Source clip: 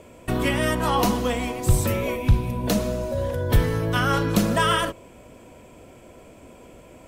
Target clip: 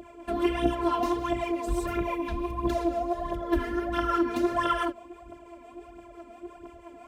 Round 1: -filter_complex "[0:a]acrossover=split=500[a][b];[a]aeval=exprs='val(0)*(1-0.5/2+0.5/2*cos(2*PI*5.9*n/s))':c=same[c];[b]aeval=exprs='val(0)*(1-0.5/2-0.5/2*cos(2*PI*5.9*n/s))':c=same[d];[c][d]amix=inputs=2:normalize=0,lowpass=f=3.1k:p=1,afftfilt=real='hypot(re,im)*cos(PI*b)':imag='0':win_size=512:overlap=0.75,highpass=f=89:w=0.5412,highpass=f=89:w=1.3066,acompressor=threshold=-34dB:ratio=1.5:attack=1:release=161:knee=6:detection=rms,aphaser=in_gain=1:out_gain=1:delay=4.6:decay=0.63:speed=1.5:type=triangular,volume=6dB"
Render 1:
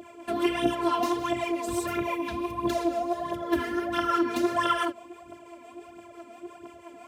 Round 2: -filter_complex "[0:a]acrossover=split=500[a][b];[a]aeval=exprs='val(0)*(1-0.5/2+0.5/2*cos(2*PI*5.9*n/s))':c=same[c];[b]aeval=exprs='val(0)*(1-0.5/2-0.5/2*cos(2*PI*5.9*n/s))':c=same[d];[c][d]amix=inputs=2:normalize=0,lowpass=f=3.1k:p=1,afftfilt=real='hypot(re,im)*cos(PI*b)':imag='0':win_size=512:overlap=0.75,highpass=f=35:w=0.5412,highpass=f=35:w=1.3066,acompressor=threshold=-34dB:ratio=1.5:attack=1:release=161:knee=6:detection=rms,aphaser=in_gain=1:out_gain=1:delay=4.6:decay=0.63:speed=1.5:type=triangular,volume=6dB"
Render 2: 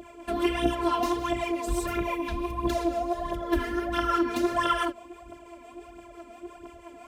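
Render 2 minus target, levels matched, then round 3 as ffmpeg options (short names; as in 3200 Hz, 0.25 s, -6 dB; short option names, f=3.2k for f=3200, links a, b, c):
4000 Hz band +4.0 dB
-filter_complex "[0:a]acrossover=split=500[a][b];[a]aeval=exprs='val(0)*(1-0.5/2+0.5/2*cos(2*PI*5.9*n/s))':c=same[c];[b]aeval=exprs='val(0)*(1-0.5/2-0.5/2*cos(2*PI*5.9*n/s))':c=same[d];[c][d]amix=inputs=2:normalize=0,lowpass=f=1.4k:p=1,afftfilt=real='hypot(re,im)*cos(PI*b)':imag='0':win_size=512:overlap=0.75,highpass=f=35:w=0.5412,highpass=f=35:w=1.3066,acompressor=threshold=-34dB:ratio=1.5:attack=1:release=161:knee=6:detection=rms,aphaser=in_gain=1:out_gain=1:delay=4.6:decay=0.63:speed=1.5:type=triangular,volume=6dB"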